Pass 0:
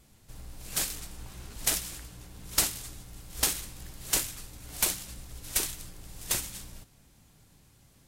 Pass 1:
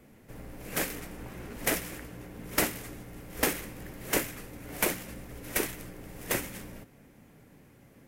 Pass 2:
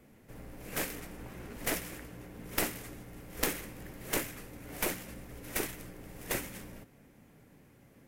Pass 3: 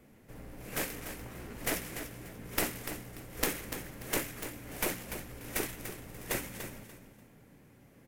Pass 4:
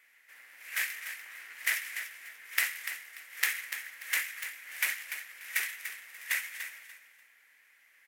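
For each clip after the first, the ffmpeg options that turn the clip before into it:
ffmpeg -i in.wav -filter_complex "[0:a]equalizer=frequency=125:width_type=o:width=1:gain=4,equalizer=frequency=250:width_type=o:width=1:gain=8,equalizer=frequency=500:width_type=o:width=1:gain=9,equalizer=frequency=2000:width_type=o:width=1:gain=8,equalizer=frequency=4000:width_type=o:width=1:gain=-8,equalizer=frequency=8000:width_type=o:width=1:gain=-7,acrossover=split=170[link_01][link_02];[link_02]acontrast=21[link_03];[link_01][link_03]amix=inputs=2:normalize=0,volume=-4dB" out.wav
ffmpeg -i in.wav -af "aeval=exprs='0.376*(cos(1*acos(clip(val(0)/0.376,-1,1)))-cos(1*PI/2))+0.188*(cos(3*acos(clip(val(0)/0.376,-1,1)))-cos(3*PI/2))+0.075*(cos(5*acos(clip(val(0)/0.376,-1,1)))-cos(5*PI/2))+0.0168*(cos(6*acos(clip(val(0)/0.376,-1,1)))-cos(6*PI/2))':channel_layout=same,volume=3dB" out.wav
ffmpeg -i in.wav -af "aecho=1:1:292|584|876:0.335|0.0837|0.0209" out.wav
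ffmpeg -i in.wav -af "highpass=frequency=1900:width_type=q:width=3.4" out.wav

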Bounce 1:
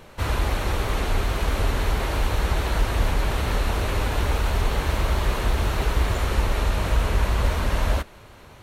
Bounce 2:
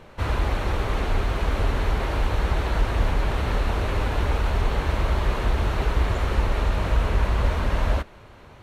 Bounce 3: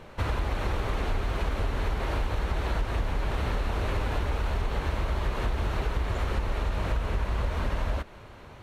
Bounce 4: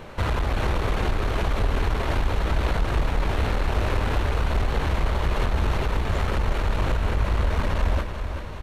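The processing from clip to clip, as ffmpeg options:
ffmpeg -i in.wav -af "lowpass=frequency=3000:poles=1" out.wav
ffmpeg -i in.wav -af "acompressor=threshold=-24dB:ratio=6" out.wav
ffmpeg -i in.wav -af "aresample=32000,aresample=44100,aeval=exprs='(tanh(17.8*val(0)+0.35)-tanh(0.35))/17.8':channel_layout=same,aecho=1:1:385|770|1155|1540|1925|2310|2695:0.355|0.199|0.111|0.0623|0.0349|0.0195|0.0109,volume=7.5dB" out.wav

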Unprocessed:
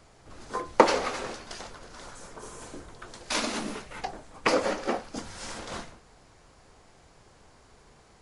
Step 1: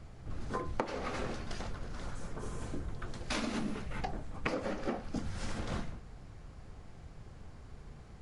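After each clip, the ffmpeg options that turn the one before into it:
ffmpeg -i in.wav -af "bass=frequency=250:gain=13,treble=frequency=4000:gain=-6,bandreject=frequency=960:width=18,acompressor=threshold=-29dB:ratio=12,volume=-2dB" out.wav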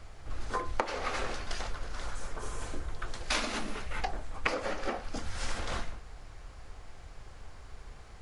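ffmpeg -i in.wav -af "equalizer=frequency=170:width_type=o:width=2.4:gain=-14.5,volume=7dB" out.wav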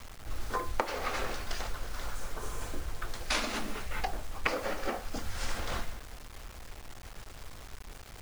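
ffmpeg -i in.wav -af "acrusher=bits=7:mix=0:aa=0.000001" out.wav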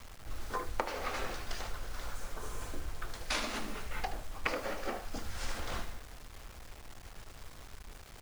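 ffmpeg -i in.wav -af "aecho=1:1:76:0.266,volume=-3.5dB" out.wav

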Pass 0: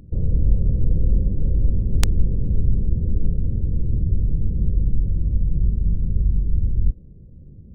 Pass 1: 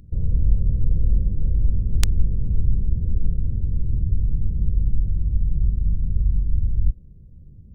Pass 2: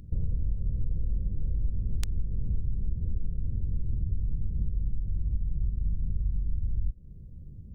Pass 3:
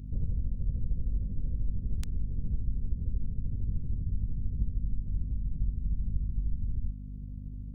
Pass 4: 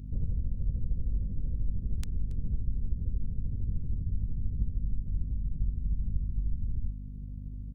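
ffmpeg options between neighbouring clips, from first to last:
ffmpeg -i in.wav -af "equalizer=frequency=430:width_type=o:width=2.8:gain=-8.5" out.wav
ffmpeg -i in.wav -af "acompressor=threshold=-24dB:ratio=6" out.wav
ffmpeg -i in.wav -af "tremolo=f=13:d=0.57,aeval=exprs='val(0)+0.0112*(sin(2*PI*50*n/s)+sin(2*PI*2*50*n/s)/2+sin(2*PI*3*50*n/s)/3+sin(2*PI*4*50*n/s)/4+sin(2*PI*5*50*n/s)/5)':channel_layout=same" out.wav
ffmpeg -i in.wav -af "aecho=1:1:278:0.112" out.wav

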